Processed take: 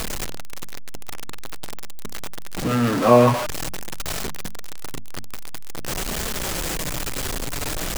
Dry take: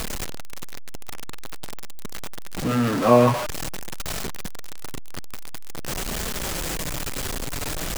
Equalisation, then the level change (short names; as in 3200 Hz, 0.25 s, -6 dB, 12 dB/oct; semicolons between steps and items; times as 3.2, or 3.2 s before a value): notches 50/100/150/200/250 Hz; +2.0 dB